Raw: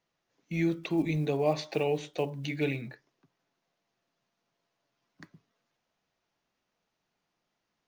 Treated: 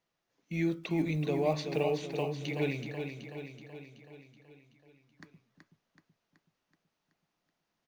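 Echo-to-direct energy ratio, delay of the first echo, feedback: −5.0 dB, 377 ms, 58%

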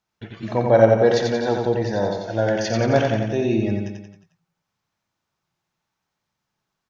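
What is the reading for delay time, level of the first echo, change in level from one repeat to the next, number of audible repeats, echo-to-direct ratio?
89 ms, −4.0 dB, −5.5 dB, 5, −2.5 dB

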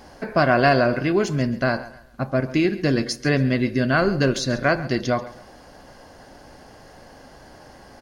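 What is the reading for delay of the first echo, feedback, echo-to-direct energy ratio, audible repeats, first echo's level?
136 ms, 33%, −17.0 dB, 2, −17.5 dB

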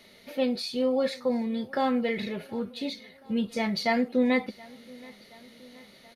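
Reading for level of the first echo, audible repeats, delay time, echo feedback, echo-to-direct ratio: −23.0 dB, 3, 725 ms, 59%, −21.0 dB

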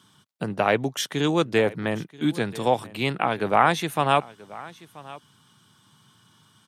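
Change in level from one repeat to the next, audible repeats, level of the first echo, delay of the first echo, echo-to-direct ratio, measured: repeats not evenly spaced, 1, −20.0 dB, 982 ms, −20.0 dB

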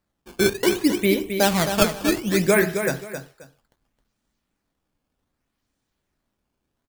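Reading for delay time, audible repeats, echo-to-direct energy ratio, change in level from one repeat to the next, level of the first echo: 266 ms, 2, −8.0 dB, −12.5 dB, −8.0 dB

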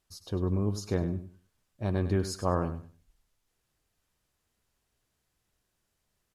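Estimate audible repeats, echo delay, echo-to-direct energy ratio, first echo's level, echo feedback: 2, 99 ms, −12.0 dB, −12.0 dB, 22%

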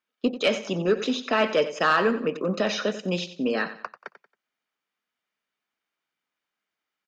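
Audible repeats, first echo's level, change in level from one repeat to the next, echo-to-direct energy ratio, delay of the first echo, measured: 3, −13.0 dB, −9.5 dB, −12.5 dB, 91 ms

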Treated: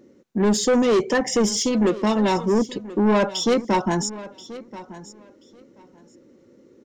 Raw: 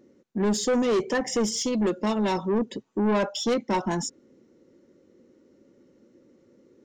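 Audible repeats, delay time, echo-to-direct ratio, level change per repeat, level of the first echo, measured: 2, 1,032 ms, −17.0 dB, −15.5 dB, −17.0 dB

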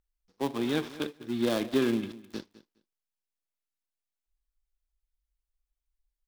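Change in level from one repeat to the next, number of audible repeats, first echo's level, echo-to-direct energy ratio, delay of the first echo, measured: −16.0 dB, 2, −18.0 dB, −18.0 dB, 207 ms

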